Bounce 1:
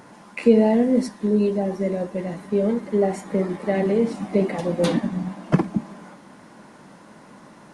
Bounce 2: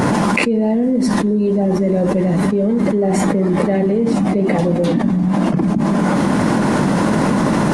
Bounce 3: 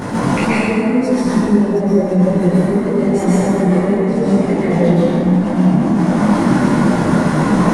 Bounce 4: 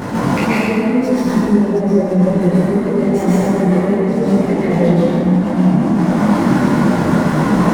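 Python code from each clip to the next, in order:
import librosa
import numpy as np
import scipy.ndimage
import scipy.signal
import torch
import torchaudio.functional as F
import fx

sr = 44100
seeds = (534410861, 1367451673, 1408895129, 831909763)

y1 = fx.low_shelf(x, sr, hz=440.0, db=9.0)
y1 = fx.env_flatten(y1, sr, amount_pct=100)
y1 = y1 * 10.0 ** (-10.0 / 20.0)
y2 = fx.rev_plate(y1, sr, seeds[0], rt60_s=2.8, hf_ratio=0.5, predelay_ms=105, drr_db=-8.5)
y2 = fx.detune_double(y2, sr, cents=22)
y2 = y2 * 10.0 ** (-4.5 / 20.0)
y3 = fx.running_max(y2, sr, window=3)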